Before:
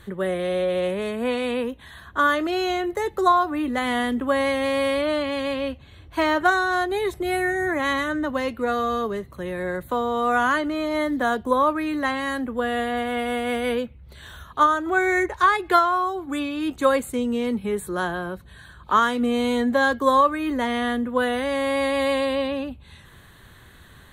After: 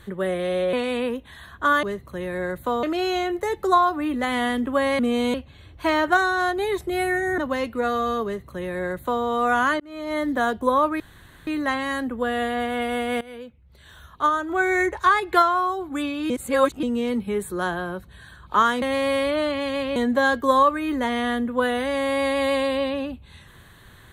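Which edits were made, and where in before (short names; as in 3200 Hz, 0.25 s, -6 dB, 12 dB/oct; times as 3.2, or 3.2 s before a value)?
0.73–1.27 cut
4.53–5.67 swap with 19.19–19.54
7.71–8.22 cut
9.08–10.08 copy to 2.37
10.64–11.09 fade in linear
11.84 insert room tone 0.47 s
13.58–15.16 fade in, from -19 dB
16.67–17.2 reverse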